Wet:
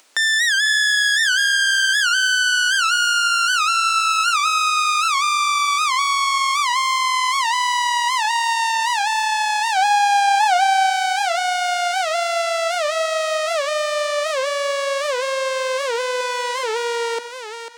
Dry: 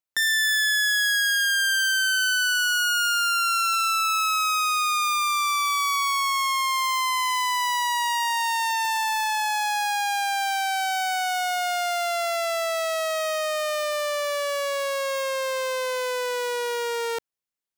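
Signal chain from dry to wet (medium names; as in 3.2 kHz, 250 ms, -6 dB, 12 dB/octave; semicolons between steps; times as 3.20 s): 16.20–16.64 s: comb 5.2 ms, depth 56%; steep high-pass 230 Hz 48 dB/octave; reverberation RT60 0.65 s, pre-delay 55 ms, DRR 15.5 dB; 9.77–10.90 s: dynamic bell 810 Hz, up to +6 dB, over -38 dBFS, Q 1.4; thinning echo 496 ms, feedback 19%, high-pass 720 Hz, level -8.5 dB; upward compressor, threshold -30 dBFS; Savitzky-Golay filter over 9 samples; warped record 78 rpm, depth 160 cents; trim +4.5 dB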